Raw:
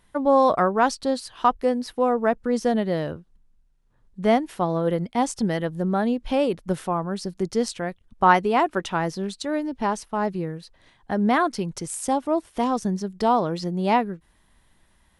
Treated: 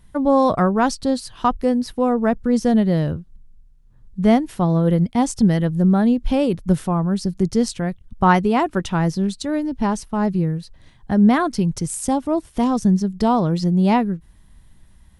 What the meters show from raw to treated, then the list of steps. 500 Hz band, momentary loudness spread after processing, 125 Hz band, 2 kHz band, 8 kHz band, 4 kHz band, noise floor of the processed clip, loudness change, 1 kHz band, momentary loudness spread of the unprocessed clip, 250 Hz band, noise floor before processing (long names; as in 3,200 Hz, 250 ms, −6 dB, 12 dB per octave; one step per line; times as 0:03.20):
+1.0 dB, 7 LU, +10.5 dB, 0.0 dB, +3.5 dB, +2.0 dB, −50 dBFS, +4.5 dB, 0.0 dB, 10 LU, +8.0 dB, −62 dBFS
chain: bass and treble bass +14 dB, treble +4 dB